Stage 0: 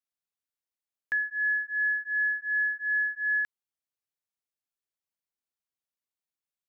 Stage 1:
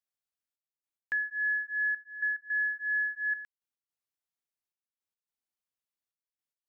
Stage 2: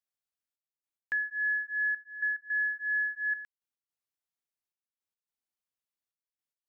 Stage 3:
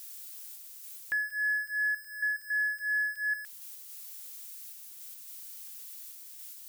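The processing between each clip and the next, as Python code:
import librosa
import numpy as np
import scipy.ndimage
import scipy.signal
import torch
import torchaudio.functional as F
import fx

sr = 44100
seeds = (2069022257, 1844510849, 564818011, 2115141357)

y1 = fx.step_gate(x, sr, bpm=108, pattern='xxxx..x.xx', floor_db=-12.0, edge_ms=4.5)
y1 = F.gain(torch.from_numpy(y1), -2.5).numpy()
y2 = y1
y3 = y2 + 0.5 * 10.0 ** (-39.0 / 20.0) * np.diff(np.sign(y2), prepend=np.sign(y2[:1]))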